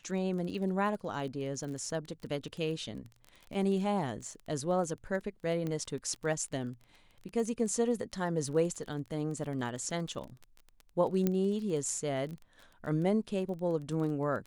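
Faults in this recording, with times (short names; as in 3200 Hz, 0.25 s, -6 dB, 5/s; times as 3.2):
crackle 22/s -39 dBFS
5.67 pop -24 dBFS
11.27 pop -16 dBFS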